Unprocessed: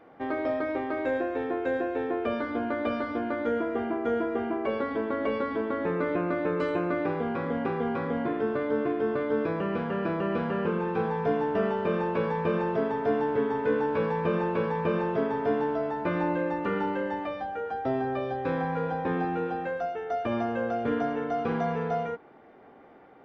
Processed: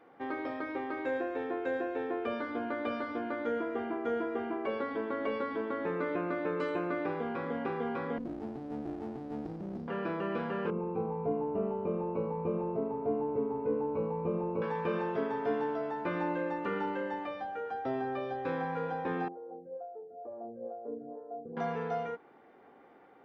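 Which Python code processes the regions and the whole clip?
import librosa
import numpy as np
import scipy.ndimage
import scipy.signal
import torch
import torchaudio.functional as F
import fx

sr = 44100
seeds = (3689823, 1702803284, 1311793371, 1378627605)

y = fx.chain(x, sr, fx.cheby2_bandstop(low_hz=740.0, high_hz=2500.0, order=4, stop_db=50),
    fx.running_max(window=33), at=(8.18, 9.88))
y = fx.chain(y, sr, fx.moving_average(points=26),
    fx.low_shelf(hz=87.0, db=12.0), at=(10.7, 14.62))
y = fx.chain(y, sr, fx.ladder_lowpass(hz=690.0, resonance_pct=50),
    fx.stagger_phaser(hz=2.2), at=(19.28, 21.57))
y = fx.low_shelf(y, sr, hz=130.0, db=-11.0)
y = fx.notch(y, sr, hz=630.0, q=12.0)
y = y * 10.0 ** (-4.0 / 20.0)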